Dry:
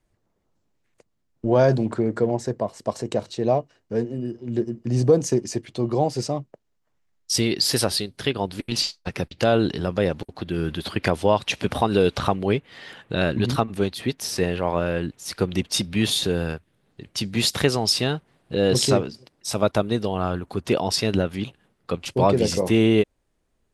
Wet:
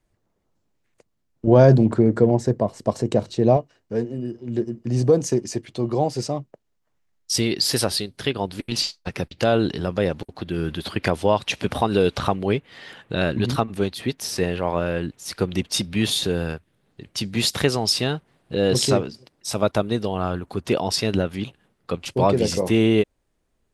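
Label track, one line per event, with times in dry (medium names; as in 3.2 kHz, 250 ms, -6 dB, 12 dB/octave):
1.470000	3.570000	bass shelf 450 Hz +8.5 dB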